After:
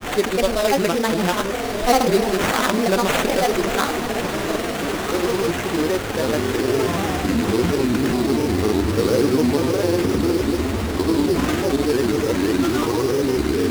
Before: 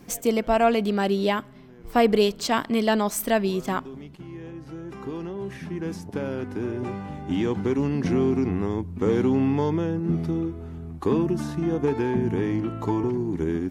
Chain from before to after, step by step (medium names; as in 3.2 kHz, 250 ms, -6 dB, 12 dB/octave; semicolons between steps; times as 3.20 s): one-bit delta coder 64 kbps, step -34.5 dBFS; peaking EQ 160 Hz -13.5 dB 0.83 oct; band-stop 890 Hz, Q 12; de-hum 55.88 Hz, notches 30; in parallel at +1.5 dB: compressor with a negative ratio -34 dBFS, ratio -1; on the sum: sample-rate reducer 4.8 kHz, jitter 20%; echo that smears into a reverb 1309 ms, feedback 46%, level -7 dB; granulator, pitch spread up and down by 3 st; trim +5.5 dB